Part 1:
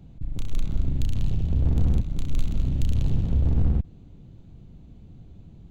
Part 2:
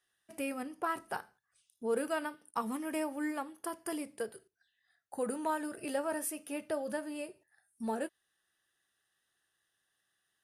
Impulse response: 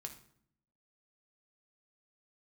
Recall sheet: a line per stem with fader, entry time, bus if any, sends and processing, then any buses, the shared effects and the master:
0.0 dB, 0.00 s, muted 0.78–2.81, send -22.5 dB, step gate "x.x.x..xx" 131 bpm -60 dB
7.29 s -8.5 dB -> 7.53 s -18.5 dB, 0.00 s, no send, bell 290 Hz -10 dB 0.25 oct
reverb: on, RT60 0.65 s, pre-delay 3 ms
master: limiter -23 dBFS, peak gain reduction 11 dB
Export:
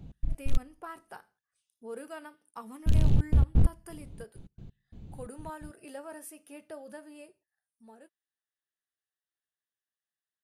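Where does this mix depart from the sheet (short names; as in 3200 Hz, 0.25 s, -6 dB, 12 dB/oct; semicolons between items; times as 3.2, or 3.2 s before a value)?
stem 2: missing bell 290 Hz -10 dB 0.25 oct; master: missing limiter -23 dBFS, peak gain reduction 11 dB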